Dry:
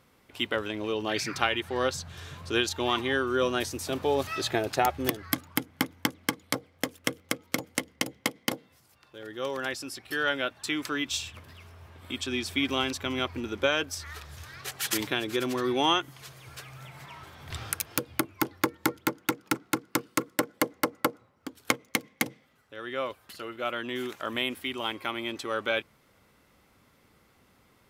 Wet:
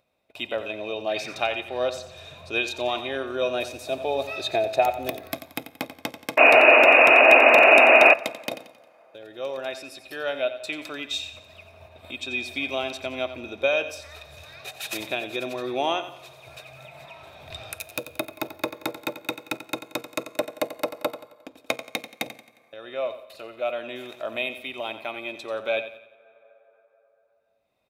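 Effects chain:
noise gate −49 dBFS, range −57 dB
repeating echo 89 ms, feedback 41%, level −12 dB
sound drawn into the spectrogram noise, 0:06.37–0:08.14, 240–2,900 Hz −15 dBFS
hollow resonant body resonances 640/2,500/3,700 Hz, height 18 dB, ringing for 25 ms
on a send at −17.5 dB: convolution reverb RT60 1.6 s, pre-delay 7 ms
on the sum: upward compression, threshold −32 dBFS
level −7 dB

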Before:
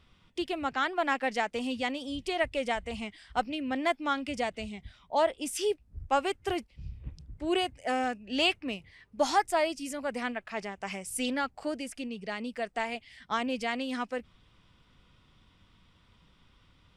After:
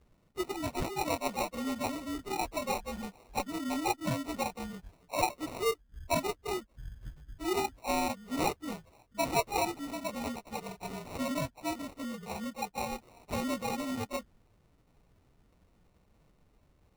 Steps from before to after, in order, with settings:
partials spread apart or drawn together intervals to 114%
decimation without filtering 27×

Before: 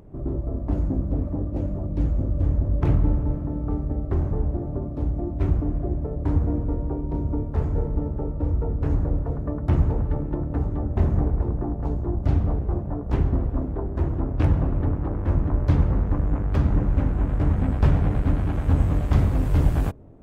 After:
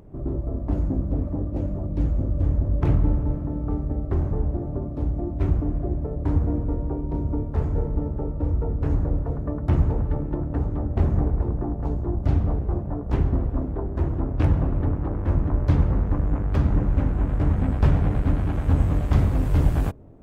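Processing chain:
0:10.38–0:11.04: highs frequency-modulated by the lows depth 0.56 ms

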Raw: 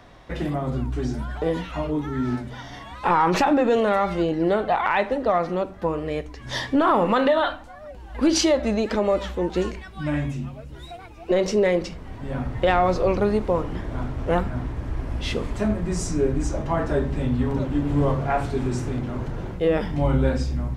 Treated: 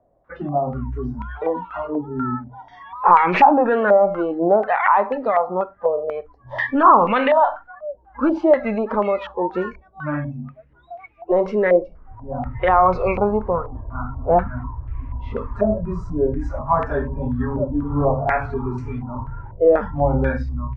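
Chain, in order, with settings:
log-companded quantiser 8 bits
noise reduction from a noise print of the clip's start 18 dB
low-pass on a step sequencer 4.1 Hz 620–2,300 Hz

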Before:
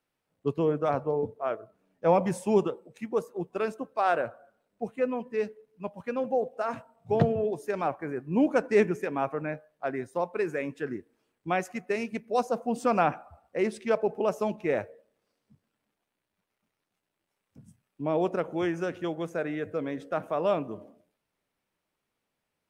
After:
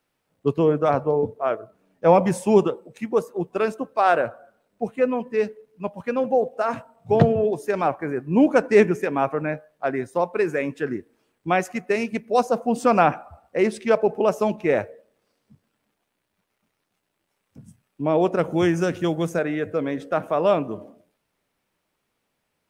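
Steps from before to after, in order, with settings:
0:18.39–0:19.39: bass and treble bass +7 dB, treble +8 dB
level +7 dB

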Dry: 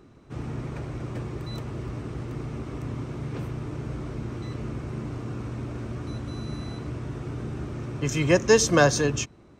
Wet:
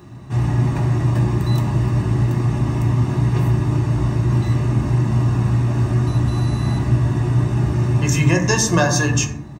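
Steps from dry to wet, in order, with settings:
high-pass filter 64 Hz
high-shelf EQ 9,000 Hz +9.5 dB
comb filter 1.1 ms, depth 57%
downward compressor 6 to 1, threshold −25 dBFS, peak gain reduction 12 dB
on a send: convolution reverb RT60 0.85 s, pre-delay 4 ms, DRR 1 dB
on the sum: level +8.5 dB

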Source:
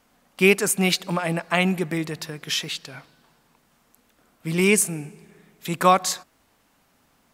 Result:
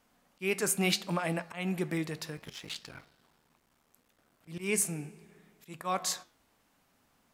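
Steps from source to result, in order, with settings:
0:02.36–0:04.48: sub-harmonics by changed cycles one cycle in 3, muted
volume swells 255 ms
flanger 0.7 Hz, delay 8.6 ms, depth 5.7 ms, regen −81%
level −2.5 dB

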